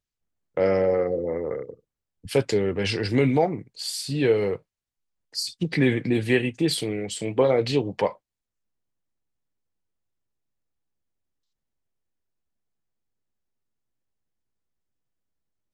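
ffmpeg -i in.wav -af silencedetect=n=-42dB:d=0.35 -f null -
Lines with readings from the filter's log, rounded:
silence_start: 0.00
silence_end: 0.57 | silence_duration: 0.57
silence_start: 1.74
silence_end: 2.24 | silence_duration: 0.50
silence_start: 4.57
silence_end: 5.34 | silence_duration: 0.77
silence_start: 8.15
silence_end: 15.73 | silence_duration: 7.58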